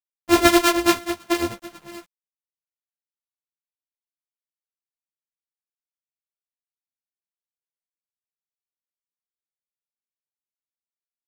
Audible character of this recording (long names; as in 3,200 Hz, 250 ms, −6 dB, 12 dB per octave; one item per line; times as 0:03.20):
a buzz of ramps at a fixed pitch in blocks of 128 samples
tremolo triangle 9.3 Hz, depth 85%
a quantiser's noise floor 10 bits, dither none
a shimmering, thickened sound